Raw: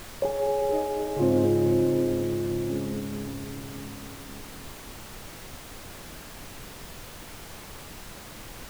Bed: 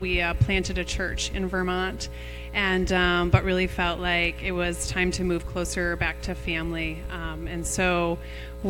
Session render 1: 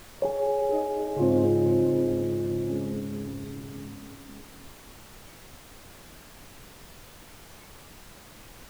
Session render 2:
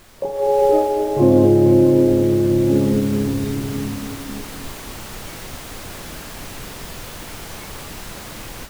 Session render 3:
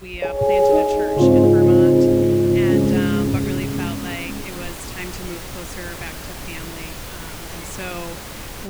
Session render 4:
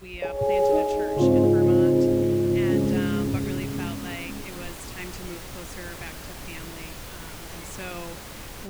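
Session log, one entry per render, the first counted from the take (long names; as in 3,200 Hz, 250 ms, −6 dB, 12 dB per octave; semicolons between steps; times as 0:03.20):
noise reduction from a noise print 6 dB
automatic gain control gain up to 15 dB
mix in bed −7.5 dB
level −6 dB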